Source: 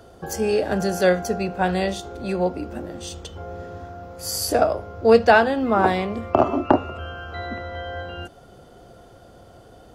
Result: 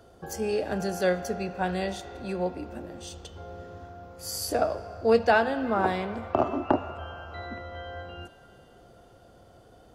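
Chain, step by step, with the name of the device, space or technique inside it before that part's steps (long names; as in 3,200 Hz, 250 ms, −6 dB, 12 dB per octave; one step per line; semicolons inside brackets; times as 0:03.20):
filtered reverb send (on a send: high-pass filter 570 Hz 24 dB per octave + low-pass filter 4,500 Hz 12 dB per octave + convolution reverb RT60 3.1 s, pre-delay 76 ms, DRR 13 dB)
on the sum: level −7 dB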